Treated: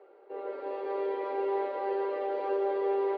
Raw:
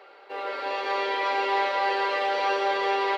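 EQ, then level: band-pass filter 380 Hz, Q 2.1; +1.5 dB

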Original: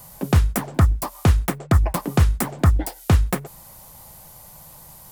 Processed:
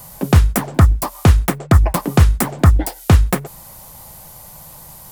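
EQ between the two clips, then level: flat; +5.5 dB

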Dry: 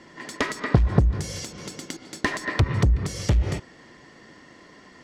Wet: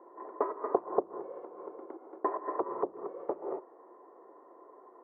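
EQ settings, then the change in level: elliptic band-pass 370–1100 Hz, stop band 80 dB; distance through air 250 m; band-stop 600 Hz, Q 19; +1.0 dB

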